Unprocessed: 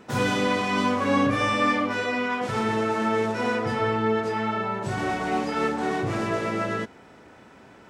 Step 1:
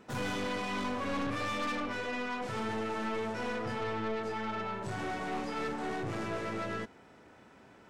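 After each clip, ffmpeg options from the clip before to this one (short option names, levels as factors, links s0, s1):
-af "aeval=exprs='(tanh(17.8*val(0)+0.4)-tanh(0.4))/17.8':c=same,volume=0.501"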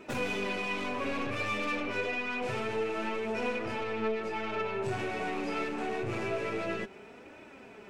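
-af "equalizer=f=400:t=o:w=0.33:g=9,equalizer=f=630:t=o:w=0.33:g=4,equalizer=f=2500:t=o:w=0.33:g=11,acompressor=threshold=0.02:ratio=6,flanger=delay=3.1:depth=7.6:regen=40:speed=0.27:shape=triangular,volume=2.37"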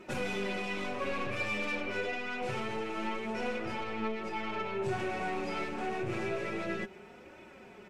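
-af "equalizer=f=76:w=1.9:g=10,aecho=1:1:5.5:0.52,volume=0.75" -ar 48000 -c:a mp2 -b:a 128k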